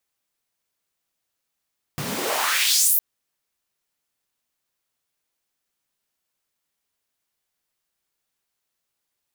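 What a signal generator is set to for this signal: swept filtered noise pink, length 1.01 s highpass, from 110 Hz, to 15 kHz, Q 2.3, exponential, gain ramp +18 dB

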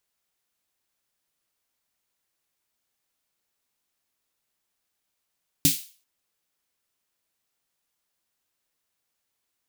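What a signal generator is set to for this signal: snare drum length 0.39 s, tones 160 Hz, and 280 Hz, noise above 2.7 kHz, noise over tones 2.5 dB, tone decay 0.16 s, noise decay 0.39 s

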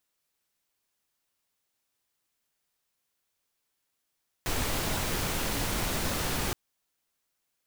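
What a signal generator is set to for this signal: noise pink, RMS -30 dBFS 2.07 s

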